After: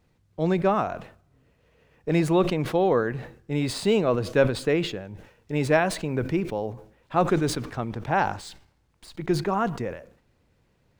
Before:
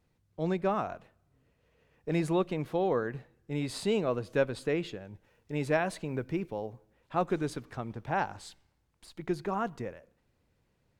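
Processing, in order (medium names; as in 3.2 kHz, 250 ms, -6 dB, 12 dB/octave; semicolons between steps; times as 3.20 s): median filter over 3 samples; decay stretcher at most 110 dB/s; trim +7 dB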